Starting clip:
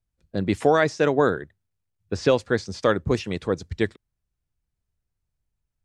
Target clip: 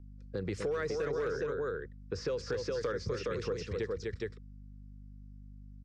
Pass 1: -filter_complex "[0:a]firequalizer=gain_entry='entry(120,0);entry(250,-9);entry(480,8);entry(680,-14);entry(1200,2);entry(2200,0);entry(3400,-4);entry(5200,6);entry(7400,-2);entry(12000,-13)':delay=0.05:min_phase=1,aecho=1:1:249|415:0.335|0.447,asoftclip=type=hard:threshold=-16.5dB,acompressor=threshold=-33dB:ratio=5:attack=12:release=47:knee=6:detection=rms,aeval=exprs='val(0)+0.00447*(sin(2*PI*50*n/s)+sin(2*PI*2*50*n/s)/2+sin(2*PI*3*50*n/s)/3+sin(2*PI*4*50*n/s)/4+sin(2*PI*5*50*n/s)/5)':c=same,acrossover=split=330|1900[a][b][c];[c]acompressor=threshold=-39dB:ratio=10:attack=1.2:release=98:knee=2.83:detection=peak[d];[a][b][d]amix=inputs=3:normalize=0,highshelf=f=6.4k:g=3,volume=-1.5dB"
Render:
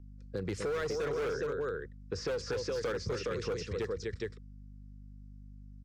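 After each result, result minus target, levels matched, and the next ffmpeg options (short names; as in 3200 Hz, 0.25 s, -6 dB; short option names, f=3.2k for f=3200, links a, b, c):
hard clip: distortion +14 dB; 8000 Hz band +3.5 dB
-filter_complex "[0:a]firequalizer=gain_entry='entry(120,0);entry(250,-9);entry(480,8);entry(680,-14);entry(1200,2);entry(2200,0);entry(3400,-4);entry(5200,6);entry(7400,-2);entry(12000,-13)':delay=0.05:min_phase=1,aecho=1:1:249|415:0.335|0.447,asoftclip=type=hard:threshold=-9.5dB,acompressor=threshold=-33dB:ratio=5:attack=12:release=47:knee=6:detection=rms,aeval=exprs='val(0)+0.00447*(sin(2*PI*50*n/s)+sin(2*PI*2*50*n/s)/2+sin(2*PI*3*50*n/s)/3+sin(2*PI*4*50*n/s)/4+sin(2*PI*5*50*n/s)/5)':c=same,acrossover=split=330|1900[a][b][c];[c]acompressor=threshold=-39dB:ratio=10:attack=1.2:release=98:knee=2.83:detection=peak[d];[a][b][d]amix=inputs=3:normalize=0,highshelf=f=6.4k:g=3,volume=-1.5dB"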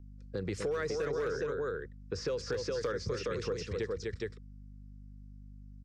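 8000 Hz band +3.0 dB
-filter_complex "[0:a]firequalizer=gain_entry='entry(120,0);entry(250,-9);entry(480,8);entry(680,-14);entry(1200,2);entry(2200,0);entry(3400,-4);entry(5200,6);entry(7400,-2);entry(12000,-13)':delay=0.05:min_phase=1,aecho=1:1:249|415:0.335|0.447,asoftclip=type=hard:threshold=-9.5dB,acompressor=threshold=-33dB:ratio=5:attack=12:release=47:knee=6:detection=rms,aeval=exprs='val(0)+0.00447*(sin(2*PI*50*n/s)+sin(2*PI*2*50*n/s)/2+sin(2*PI*3*50*n/s)/3+sin(2*PI*4*50*n/s)/4+sin(2*PI*5*50*n/s)/5)':c=same,acrossover=split=330|1900[a][b][c];[c]acompressor=threshold=-39dB:ratio=10:attack=1.2:release=98:knee=2.83:detection=peak[d];[a][b][d]amix=inputs=3:normalize=0,highshelf=f=6.4k:g=-4,volume=-1.5dB"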